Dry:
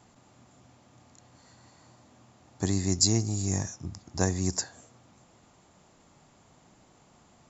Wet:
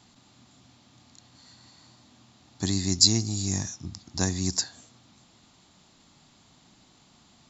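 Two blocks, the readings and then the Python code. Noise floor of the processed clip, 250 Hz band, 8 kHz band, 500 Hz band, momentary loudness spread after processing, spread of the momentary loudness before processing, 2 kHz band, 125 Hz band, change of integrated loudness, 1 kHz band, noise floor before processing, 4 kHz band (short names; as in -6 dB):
-60 dBFS, +1.0 dB, n/a, -3.5 dB, 16 LU, 15 LU, +1.0 dB, -0.5 dB, +3.0 dB, -2.5 dB, -61 dBFS, +8.0 dB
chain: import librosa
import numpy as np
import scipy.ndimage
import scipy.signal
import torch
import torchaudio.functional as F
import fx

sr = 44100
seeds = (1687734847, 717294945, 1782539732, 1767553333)

y = fx.graphic_eq(x, sr, hz=(250, 500, 4000), db=(4, -6, 12))
y = F.gain(torch.from_numpy(y), -1.0).numpy()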